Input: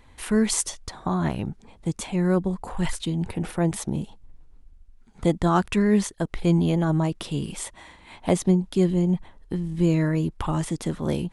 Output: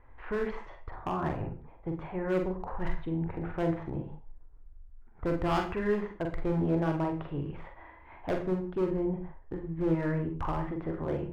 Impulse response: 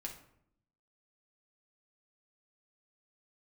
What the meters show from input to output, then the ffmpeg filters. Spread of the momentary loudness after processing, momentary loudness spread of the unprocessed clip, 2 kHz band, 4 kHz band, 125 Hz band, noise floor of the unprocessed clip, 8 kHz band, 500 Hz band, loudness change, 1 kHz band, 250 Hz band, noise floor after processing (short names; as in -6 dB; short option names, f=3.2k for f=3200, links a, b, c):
12 LU, 11 LU, -5.5 dB, -14.5 dB, -9.5 dB, -53 dBFS, under -30 dB, -4.5 dB, -8.0 dB, -5.0 dB, -9.5 dB, -53 dBFS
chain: -filter_complex "[0:a]lowpass=f=1.8k:w=0.5412,lowpass=f=1.8k:w=1.3066,equalizer=f=200:t=o:w=0.67:g=-14,volume=22.5dB,asoftclip=hard,volume=-22.5dB,asplit=2[a][b];[1:a]atrim=start_sample=2205,atrim=end_sample=6615,adelay=43[c];[b][c]afir=irnorm=-1:irlink=0,volume=-1.5dB[d];[a][d]amix=inputs=2:normalize=0,volume=-3.5dB"